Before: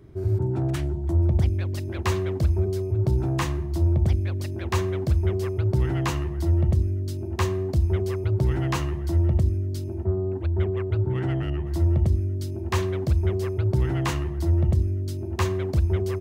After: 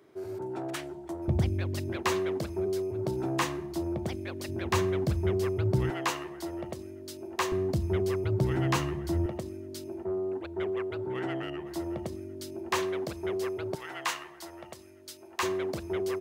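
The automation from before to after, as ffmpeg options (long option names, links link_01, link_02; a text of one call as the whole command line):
ffmpeg -i in.wav -af "asetnsamples=nb_out_samples=441:pad=0,asendcmd='1.28 highpass f 120;1.96 highpass f 260;4.49 highpass f 130;5.9 highpass f 440;7.52 highpass f 140;9.26 highpass f 350;13.75 highpass f 880;15.43 highpass f 320',highpass=460" out.wav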